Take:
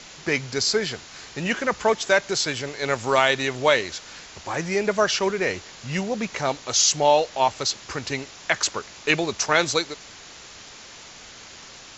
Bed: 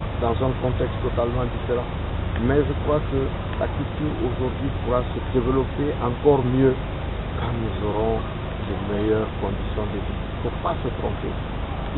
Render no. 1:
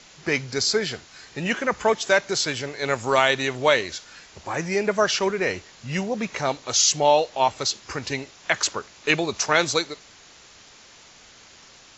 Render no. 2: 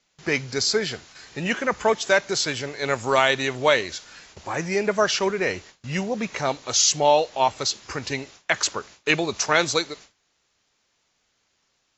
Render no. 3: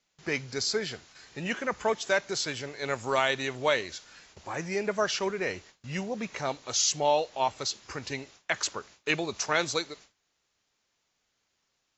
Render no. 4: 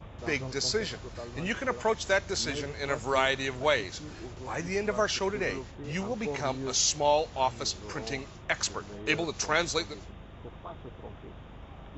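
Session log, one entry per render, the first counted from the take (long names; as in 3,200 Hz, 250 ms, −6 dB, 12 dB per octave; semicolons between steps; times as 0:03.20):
noise reduction from a noise print 6 dB
noise gate with hold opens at −36 dBFS
level −7 dB
mix in bed −18.5 dB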